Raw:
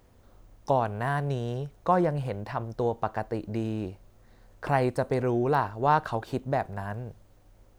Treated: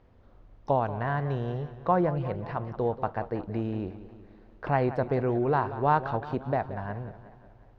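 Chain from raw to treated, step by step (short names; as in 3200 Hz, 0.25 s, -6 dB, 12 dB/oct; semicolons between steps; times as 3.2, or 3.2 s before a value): air absorption 250 m; warbling echo 0.182 s, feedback 57%, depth 127 cents, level -14 dB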